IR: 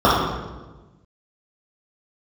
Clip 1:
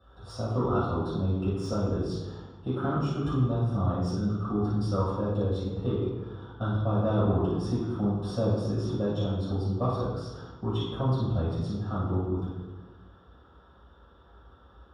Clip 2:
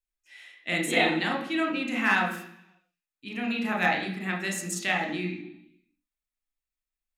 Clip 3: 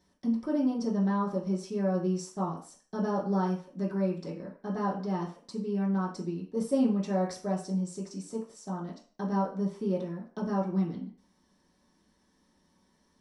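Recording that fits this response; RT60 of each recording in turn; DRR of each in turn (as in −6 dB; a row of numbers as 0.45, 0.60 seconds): 1; 1.2, 0.70, 0.45 seconds; −9.0, 0.5, −6.0 decibels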